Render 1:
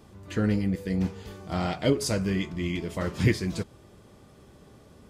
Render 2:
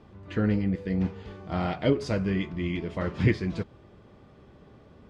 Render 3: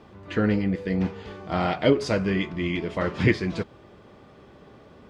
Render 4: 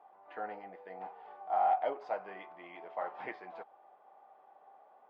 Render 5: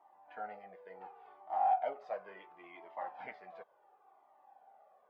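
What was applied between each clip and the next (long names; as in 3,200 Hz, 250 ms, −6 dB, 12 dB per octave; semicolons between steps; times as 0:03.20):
low-pass filter 3,100 Hz 12 dB per octave
low-shelf EQ 200 Hz −9 dB; level +6.5 dB
four-pole ladder band-pass 810 Hz, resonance 80%
flanger whose copies keep moving one way falling 0.7 Hz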